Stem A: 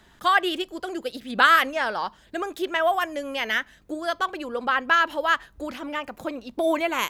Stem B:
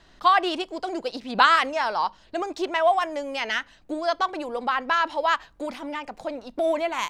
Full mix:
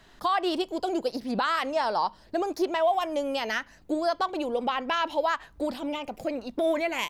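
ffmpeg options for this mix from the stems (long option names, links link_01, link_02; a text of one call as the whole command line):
ffmpeg -i stem1.wav -i stem2.wav -filter_complex "[0:a]acompressor=threshold=-26dB:ratio=6,volume=-3.5dB[link_01];[1:a]adelay=0.7,volume=-2dB[link_02];[link_01][link_02]amix=inputs=2:normalize=0,alimiter=limit=-16.5dB:level=0:latency=1:release=120" out.wav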